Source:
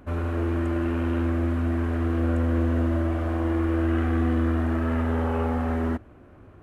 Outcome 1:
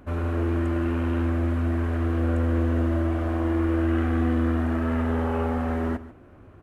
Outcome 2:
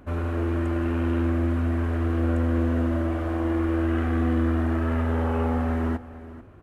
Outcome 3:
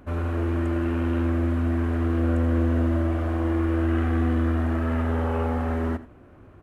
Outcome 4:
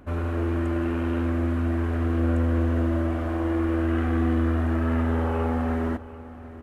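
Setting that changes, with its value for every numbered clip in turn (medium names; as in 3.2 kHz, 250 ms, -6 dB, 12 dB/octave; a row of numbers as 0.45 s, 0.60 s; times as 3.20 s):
delay, time: 142 ms, 441 ms, 84 ms, 743 ms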